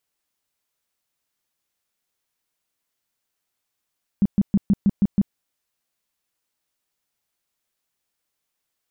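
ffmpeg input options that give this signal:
-f lavfi -i "aevalsrc='0.237*sin(2*PI*200*mod(t,0.16))*lt(mod(t,0.16),7/200)':d=1.12:s=44100"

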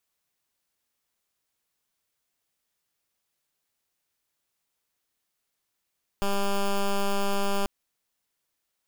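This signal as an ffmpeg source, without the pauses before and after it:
-f lavfi -i "aevalsrc='0.0596*(2*lt(mod(199*t,1),0.1)-1)':d=1.44:s=44100"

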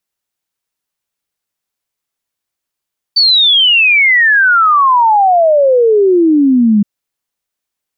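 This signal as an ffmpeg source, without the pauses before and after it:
-f lavfi -i "aevalsrc='0.531*clip(min(t,3.67-t)/0.01,0,1)*sin(2*PI*4600*3.67/log(200/4600)*(exp(log(200/4600)*t/3.67)-1))':d=3.67:s=44100"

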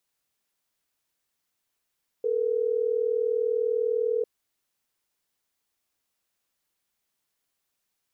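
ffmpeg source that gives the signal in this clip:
-f lavfi -i "aevalsrc='0.0531*(sin(2*PI*440*t)+sin(2*PI*480*t))*clip(min(mod(t,6),2-mod(t,6))/0.005,0,1)':d=3.12:s=44100"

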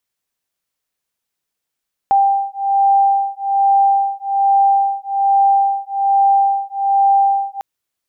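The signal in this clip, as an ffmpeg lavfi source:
-f lavfi -i "aevalsrc='0.188*(sin(2*PI*790*t)+sin(2*PI*791.2*t))':d=5.5:s=44100"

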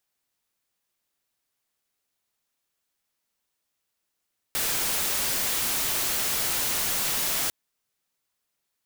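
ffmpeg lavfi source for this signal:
-f lavfi -i "anoisesrc=c=white:a=0.0819:d=2.95:r=44100:seed=1"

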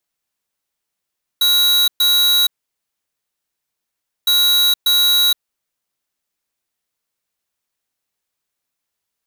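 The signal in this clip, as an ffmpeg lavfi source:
-f lavfi -i "aevalsrc='0.211*(2*lt(mod(3880*t,1),0.5)-1)*clip(min(mod(mod(t,2.86),0.59),0.47-mod(mod(t,2.86),0.59))/0.005,0,1)*lt(mod(t,2.86),1.18)':d=5.72:s=44100"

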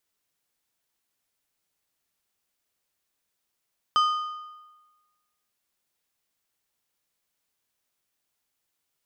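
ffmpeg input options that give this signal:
-f lavfi -i "aevalsrc='0.15*pow(10,-3*t/1.26)*sin(2*PI*1230*t)+0.0531*pow(10,-3*t/0.957)*sin(2*PI*3075*t)+0.0188*pow(10,-3*t/0.831)*sin(2*PI*4920*t)+0.00668*pow(10,-3*t/0.777)*sin(2*PI*6150*t)+0.00237*pow(10,-3*t/0.719)*sin(2*PI*7995*t)':d=1.55:s=44100"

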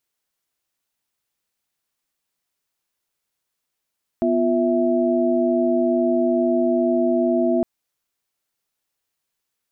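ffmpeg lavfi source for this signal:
-f lavfi -i "aevalsrc='0.0944*(sin(2*PI*246.94*t)+sin(2*PI*349.23*t)+sin(2*PI*659.26*t))':d=3.41:s=44100"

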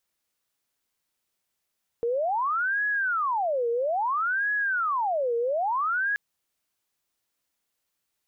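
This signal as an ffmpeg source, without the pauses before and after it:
-f lavfi -i "aevalsrc='0.0708*sin(2*PI*(1073*t-607/(2*PI*0.6)*sin(2*PI*0.6*t)))':d=4.13:s=44100"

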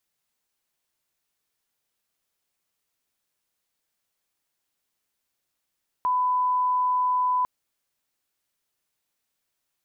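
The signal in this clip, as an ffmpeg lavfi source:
-f lavfi -i "sine=f=1000:d=1.4:r=44100,volume=-1.94dB"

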